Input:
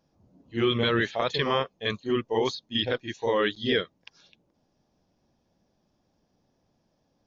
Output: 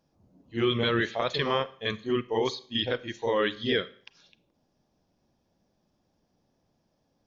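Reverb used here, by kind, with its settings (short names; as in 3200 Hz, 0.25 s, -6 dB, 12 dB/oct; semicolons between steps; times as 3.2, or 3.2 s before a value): Schroeder reverb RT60 0.5 s, combs from 33 ms, DRR 16.5 dB; gain -1.5 dB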